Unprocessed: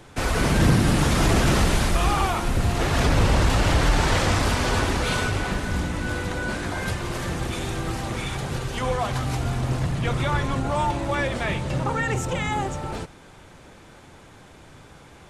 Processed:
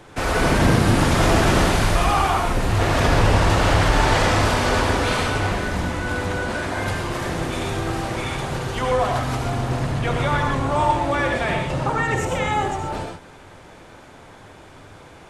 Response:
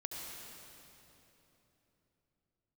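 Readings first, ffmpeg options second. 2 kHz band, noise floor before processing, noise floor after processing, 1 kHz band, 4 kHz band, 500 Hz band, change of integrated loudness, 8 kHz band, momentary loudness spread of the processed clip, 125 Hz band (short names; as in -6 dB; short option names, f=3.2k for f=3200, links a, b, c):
+4.0 dB, -48 dBFS, -44 dBFS, +5.5 dB, +2.5 dB, +5.0 dB, +3.0 dB, +1.0 dB, 8 LU, +1.5 dB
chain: -filter_complex "[0:a]equalizer=f=900:w=0.34:g=5[a];[1:a]atrim=start_sample=2205,afade=t=out:st=0.19:d=0.01,atrim=end_sample=8820[b];[a][b]afir=irnorm=-1:irlink=0,volume=3dB"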